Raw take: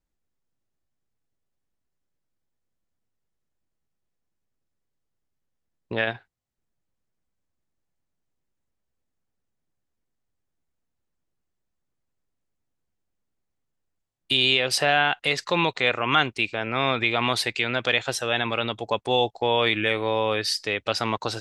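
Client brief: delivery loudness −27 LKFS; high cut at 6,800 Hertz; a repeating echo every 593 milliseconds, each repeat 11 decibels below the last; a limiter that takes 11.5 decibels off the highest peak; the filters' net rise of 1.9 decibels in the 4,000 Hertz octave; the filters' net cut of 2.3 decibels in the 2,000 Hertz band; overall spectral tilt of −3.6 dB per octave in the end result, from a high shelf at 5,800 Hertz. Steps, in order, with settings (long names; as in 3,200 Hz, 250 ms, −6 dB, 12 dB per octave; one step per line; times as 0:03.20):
low-pass filter 6,800 Hz
parametric band 2,000 Hz −4.5 dB
parametric band 4,000 Hz +5.5 dB
high-shelf EQ 5,800 Hz −3.5 dB
brickwall limiter −16.5 dBFS
repeating echo 593 ms, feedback 28%, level −11 dB
level +1.5 dB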